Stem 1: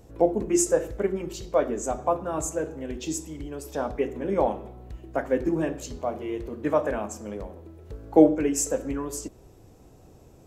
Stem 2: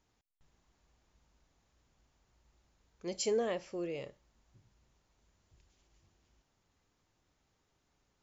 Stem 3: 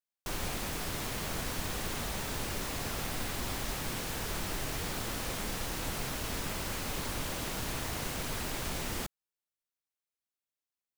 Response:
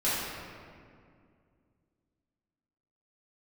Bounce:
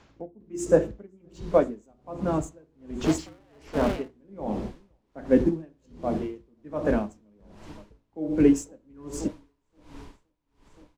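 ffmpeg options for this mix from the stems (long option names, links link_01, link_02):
-filter_complex "[0:a]agate=range=-16dB:threshold=-40dB:ratio=16:detection=peak,equalizer=frequency=200:width_type=o:width=1.6:gain=12.5,volume=0.5dB,asplit=2[link_01][link_02];[link_02]volume=-21dB[link_03];[1:a]asplit=2[link_04][link_05];[link_05]highpass=frequency=720:poles=1,volume=29dB,asoftclip=type=tanh:threshold=-23dB[link_06];[link_04][link_06]amix=inputs=2:normalize=0,lowpass=frequency=3200:poles=1,volume=-6dB,aeval=exprs='val(0)*sgn(sin(2*PI*100*n/s))':channel_layout=same,volume=1.5dB[link_07];[2:a]equalizer=frequency=960:width_type=o:width=0.29:gain=10,acrossover=split=260[link_08][link_09];[link_09]acompressor=threshold=-38dB:ratio=2.5[link_10];[link_08][link_10]amix=inputs=2:normalize=0,adelay=1100,volume=-11.5dB,asplit=2[link_11][link_12];[link_12]volume=-4dB[link_13];[link_03][link_13]amix=inputs=2:normalize=0,aecho=0:1:521|1042|1563|2084|2605|3126|3647:1|0.48|0.23|0.111|0.0531|0.0255|0.0122[link_14];[link_01][link_07][link_11][link_14]amix=inputs=4:normalize=0,lowshelf=frequency=63:gain=7,adynamicsmooth=sensitivity=5:basefreq=6300,aeval=exprs='val(0)*pow(10,-35*(0.5-0.5*cos(2*PI*1.3*n/s))/20)':channel_layout=same"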